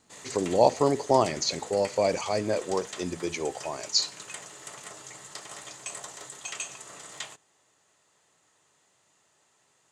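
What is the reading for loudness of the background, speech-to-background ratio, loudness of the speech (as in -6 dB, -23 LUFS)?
-40.5 LUFS, 13.5 dB, -27.0 LUFS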